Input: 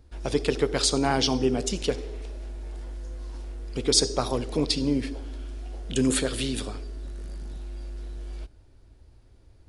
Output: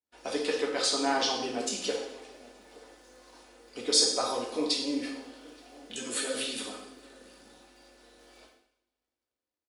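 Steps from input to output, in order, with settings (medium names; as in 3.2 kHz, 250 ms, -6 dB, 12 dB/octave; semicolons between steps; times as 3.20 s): Bessel high-pass 430 Hz, order 2; comb 4 ms, depth 35%; crackle 110 per s -50 dBFS; 0.63–1.35 s: treble shelf 8.8 kHz -9 dB; echo from a far wall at 150 m, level -22 dB; expander -52 dBFS; two-slope reverb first 0.71 s, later 2.2 s, from -25 dB, DRR -2 dB; 5.96–6.37 s: three-phase chorus; trim -5.5 dB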